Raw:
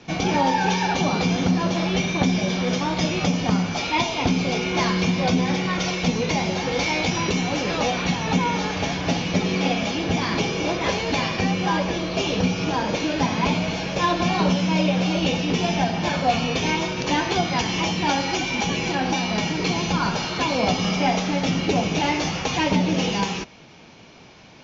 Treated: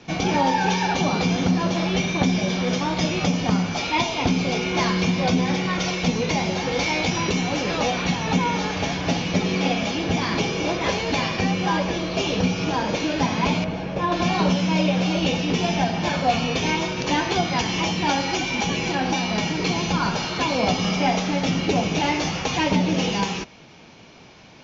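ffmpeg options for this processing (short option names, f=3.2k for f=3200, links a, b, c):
-filter_complex "[0:a]asettb=1/sr,asplit=3[a][b][c];[a]atrim=end=13.644[d];[b]atrim=start=13.64:end=14.12,asetpts=PTS-STARTPTS,afade=t=in:d=0.004:c=qsin,afade=t=out:st=0.476:d=0.004:c=qsin,lowpass=f=1.1k:p=1[e];[c]atrim=start=14.116[f];[d][e]acrossfade=d=0.004:c1=hsin:c2=qsin[g];[g][f]acrossfade=d=0.004:c1=qsin:c2=hsin"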